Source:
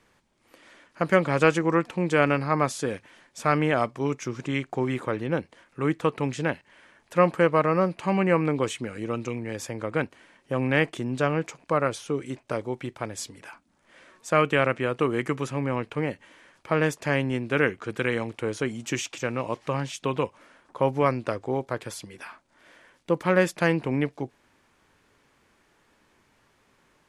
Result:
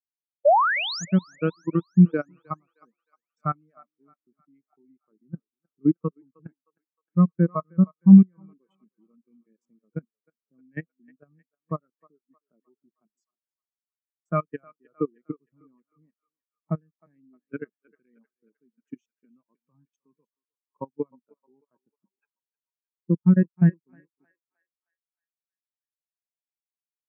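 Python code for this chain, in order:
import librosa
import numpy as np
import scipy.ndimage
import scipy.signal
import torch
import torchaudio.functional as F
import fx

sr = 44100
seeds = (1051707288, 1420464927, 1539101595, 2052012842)

y = fx.dereverb_blind(x, sr, rt60_s=0.7)
y = fx.spec_paint(y, sr, seeds[0], shape='rise', start_s=0.45, length_s=0.6, low_hz=530.0, high_hz=7300.0, level_db=-14.0)
y = fx.peak_eq(y, sr, hz=530.0, db=-8.5, octaves=0.33)
y = fx.transient(y, sr, attack_db=5, sustain_db=-7)
y = fx.low_shelf_res(y, sr, hz=120.0, db=-13.0, q=3.0)
y = fx.level_steps(y, sr, step_db=19)
y = fx.echo_thinned(y, sr, ms=310, feedback_pct=71, hz=400.0, wet_db=-9.5)
y = fx.spectral_expand(y, sr, expansion=2.5)
y = y * 10.0 ** (2.5 / 20.0)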